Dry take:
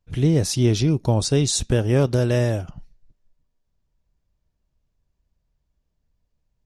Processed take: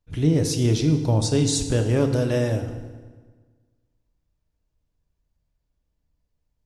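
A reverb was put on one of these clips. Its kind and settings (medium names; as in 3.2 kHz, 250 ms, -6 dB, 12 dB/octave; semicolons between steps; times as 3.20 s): FDN reverb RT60 1.5 s, low-frequency decay 1.1×, high-frequency decay 0.75×, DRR 5.5 dB; trim -3 dB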